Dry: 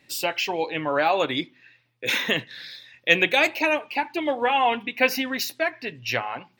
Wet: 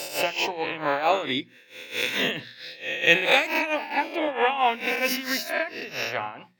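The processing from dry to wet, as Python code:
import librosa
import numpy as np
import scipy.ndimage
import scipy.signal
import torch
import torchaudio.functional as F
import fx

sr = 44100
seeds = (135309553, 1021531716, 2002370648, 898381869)

y = fx.spec_swells(x, sr, rise_s=0.89)
y = y * (1.0 - 0.72 / 2.0 + 0.72 / 2.0 * np.cos(2.0 * np.pi * 4.5 * (np.arange(len(y)) / sr)))
y = fx.hum_notches(y, sr, base_hz=60, count=4)
y = y * 10.0 ** (-1.0 / 20.0)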